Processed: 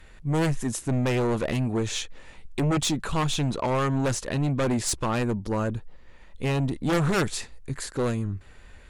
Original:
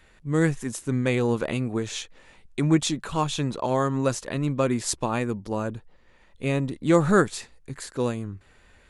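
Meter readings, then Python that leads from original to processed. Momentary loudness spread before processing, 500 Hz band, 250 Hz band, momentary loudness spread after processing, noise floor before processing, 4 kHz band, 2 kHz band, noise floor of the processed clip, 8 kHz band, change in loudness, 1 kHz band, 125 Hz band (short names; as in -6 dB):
14 LU, -2.5 dB, -1.5 dB, 9 LU, -57 dBFS, +2.0 dB, -1.0 dB, -48 dBFS, +1.5 dB, -1.0 dB, -1.0 dB, +1.0 dB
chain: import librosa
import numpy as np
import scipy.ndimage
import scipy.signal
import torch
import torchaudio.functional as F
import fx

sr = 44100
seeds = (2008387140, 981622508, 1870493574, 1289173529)

p1 = fx.low_shelf(x, sr, hz=88.0, db=8.5)
p2 = fx.fold_sine(p1, sr, drive_db=16, ceiling_db=-5.0)
p3 = p1 + F.gain(torch.from_numpy(p2), -11.0).numpy()
y = F.gain(torch.from_numpy(p3), -8.5).numpy()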